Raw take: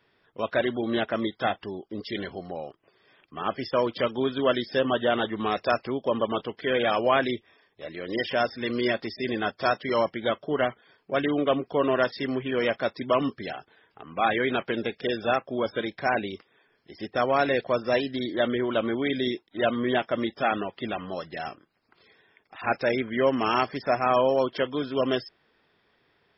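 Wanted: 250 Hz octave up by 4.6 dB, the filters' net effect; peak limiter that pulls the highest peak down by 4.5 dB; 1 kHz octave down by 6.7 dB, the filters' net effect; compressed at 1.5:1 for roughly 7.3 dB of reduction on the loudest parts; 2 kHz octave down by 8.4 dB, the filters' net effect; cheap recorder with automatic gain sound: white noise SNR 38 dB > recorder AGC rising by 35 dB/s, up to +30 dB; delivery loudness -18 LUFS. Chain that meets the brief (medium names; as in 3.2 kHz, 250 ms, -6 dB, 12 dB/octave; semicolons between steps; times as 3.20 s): peaking EQ 250 Hz +6 dB; peaking EQ 1 kHz -8.5 dB; peaking EQ 2 kHz -8 dB; compression 1.5:1, threshold -40 dBFS; peak limiter -23.5 dBFS; white noise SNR 38 dB; recorder AGC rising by 35 dB/s, up to +30 dB; trim +17 dB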